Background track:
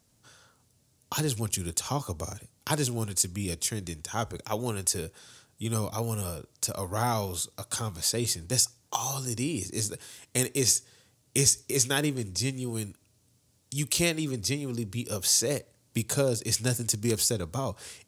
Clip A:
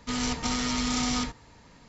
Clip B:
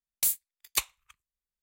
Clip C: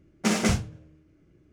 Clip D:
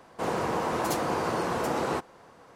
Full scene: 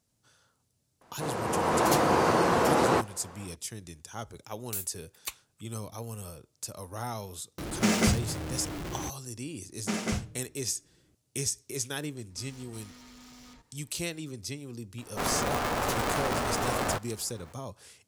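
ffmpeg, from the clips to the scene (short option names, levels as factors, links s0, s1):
-filter_complex "[4:a]asplit=2[s0][s1];[3:a]asplit=2[s2][s3];[0:a]volume=0.376[s4];[s0]dynaudnorm=f=400:g=3:m=3.76[s5];[s2]aeval=exprs='val(0)+0.5*0.0376*sgn(val(0))':c=same[s6];[1:a]asoftclip=type=tanh:threshold=0.0224[s7];[s1]aeval=exprs='val(0)*sgn(sin(2*PI*240*n/s))':c=same[s8];[s5]atrim=end=2.55,asetpts=PTS-STARTPTS,volume=0.501,afade=t=in:d=0.004:c=hsin,afade=t=out:st=2.546:d=0.004:c=hsin,adelay=1010[s9];[2:a]atrim=end=1.62,asetpts=PTS-STARTPTS,volume=0.335,afade=t=in:d=0.004:c=hsin,afade=t=out:st=1.616:d=0.004:c=hsin,adelay=4500[s10];[s6]atrim=end=1.52,asetpts=PTS-STARTPTS,volume=0.75,afade=t=in:d=0.004:c=hsin,afade=t=out:st=1.516:d=0.004:c=hsin,adelay=7580[s11];[s3]atrim=end=1.52,asetpts=PTS-STARTPTS,volume=0.422,afade=t=in:d=0.004:c=hsin,afade=t=out:st=1.516:d=0.004:c=hsin,adelay=9630[s12];[s7]atrim=end=1.88,asetpts=PTS-STARTPTS,volume=0.15,afade=t=in:d=0.004:c=hsin,afade=t=out:st=1.876:d=0.004:c=hsin,adelay=12300[s13];[s8]atrim=end=2.55,asetpts=PTS-STARTPTS,volume=0.891,afade=t=in:d=0.004:c=hsin,afade=t=out:st=2.546:d=0.004:c=hsin,adelay=14980[s14];[s4][s9][s10][s11][s12][s13][s14]amix=inputs=7:normalize=0"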